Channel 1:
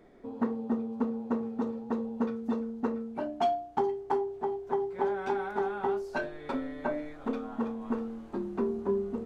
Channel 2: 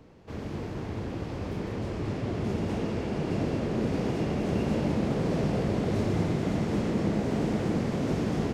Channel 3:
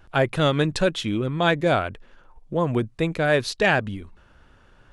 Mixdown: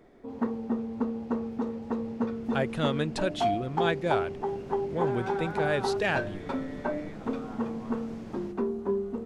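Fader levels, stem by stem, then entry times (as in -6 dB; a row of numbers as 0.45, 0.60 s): +0.5, -15.5, -8.5 dB; 0.00, 0.00, 2.40 s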